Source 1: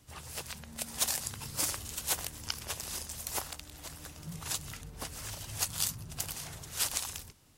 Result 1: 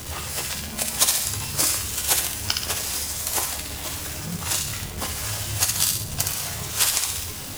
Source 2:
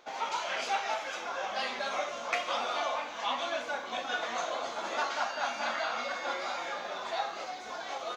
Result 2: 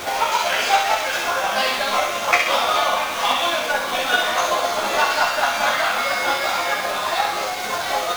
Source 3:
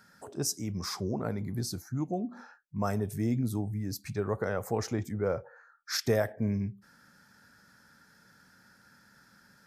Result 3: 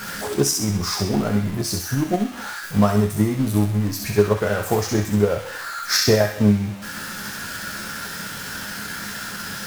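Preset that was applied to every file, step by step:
jump at every zero crossing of -34.5 dBFS; chord resonator C#2 major, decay 0.28 s; transient shaper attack +7 dB, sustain -3 dB; feedback echo behind a high-pass 65 ms, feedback 48%, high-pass 1.5 kHz, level -3.5 dB; peak normalisation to -3 dBFS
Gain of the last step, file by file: +15.5 dB, +20.0 dB, +17.5 dB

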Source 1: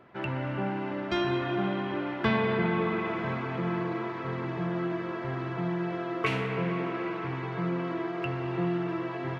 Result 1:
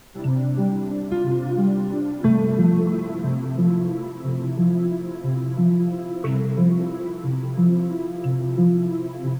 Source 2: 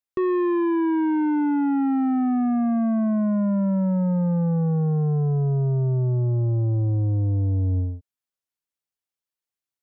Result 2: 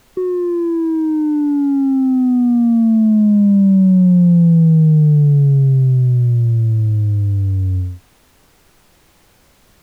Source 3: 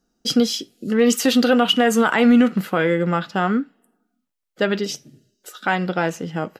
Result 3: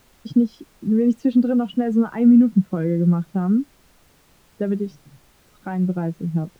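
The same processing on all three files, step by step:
expander on every frequency bin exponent 1.5; compression 1.5:1, threshold -30 dBFS; band-pass filter 170 Hz, Q 1.5; added noise pink -68 dBFS; peak normalisation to -6 dBFS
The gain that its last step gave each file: +18.0 dB, +16.0 dB, +12.0 dB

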